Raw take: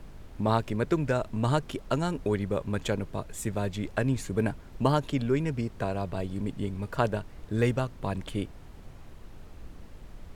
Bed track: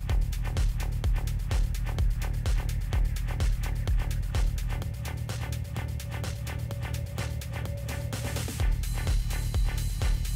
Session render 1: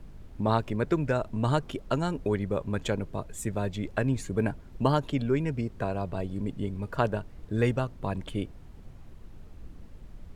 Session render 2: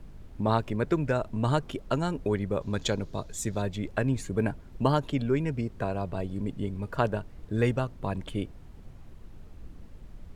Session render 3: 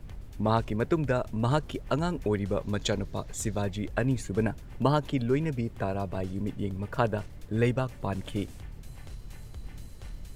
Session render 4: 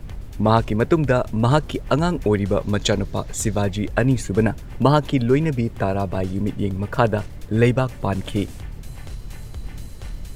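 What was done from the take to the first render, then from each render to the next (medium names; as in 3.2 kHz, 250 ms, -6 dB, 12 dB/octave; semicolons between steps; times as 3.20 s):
noise reduction 6 dB, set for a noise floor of -47 dBFS
2.61–3.62 s: high-order bell 4.9 kHz +9 dB 1.2 oct
add bed track -16.5 dB
trim +9 dB; peak limiter -2 dBFS, peak gain reduction 1 dB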